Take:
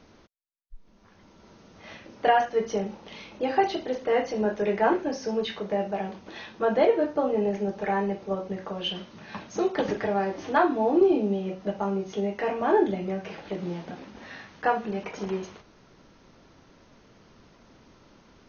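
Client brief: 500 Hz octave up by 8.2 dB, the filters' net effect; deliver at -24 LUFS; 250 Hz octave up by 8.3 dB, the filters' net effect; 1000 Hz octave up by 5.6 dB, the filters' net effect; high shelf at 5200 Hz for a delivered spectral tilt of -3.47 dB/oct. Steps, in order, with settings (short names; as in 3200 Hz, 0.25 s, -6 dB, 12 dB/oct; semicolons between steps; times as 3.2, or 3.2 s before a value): bell 250 Hz +9 dB; bell 500 Hz +6.5 dB; bell 1000 Hz +3.5 dB; high shelf 5200 Hz +7.5 dB; gain -4.5 dB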